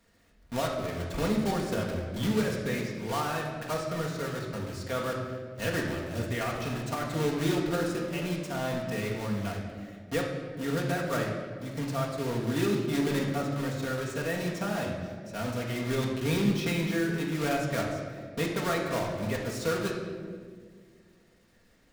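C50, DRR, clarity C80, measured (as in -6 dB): 3.0 dB, -1.5 dB, 5.0 dB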